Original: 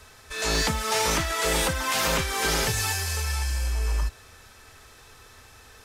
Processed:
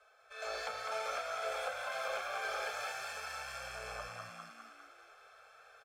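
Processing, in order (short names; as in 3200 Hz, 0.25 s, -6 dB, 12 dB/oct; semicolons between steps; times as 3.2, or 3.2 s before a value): added harmonics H 7 -23 dB, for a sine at -11.5 dBFS; inverse Chebyshev high-pass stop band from 330 Hz, stop band 40 dB; on a send: frequency-shifting echo 0.201 s, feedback 58%, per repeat +58 Hz, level -4 dB; on the sum: vocal rider within 4 dB 2 s; running mean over 46 samples; in parallel at +2 dB: compressor, threshold -53 dBFS, peak gain reduction 13 dB; on the sum: gain +3.5 dB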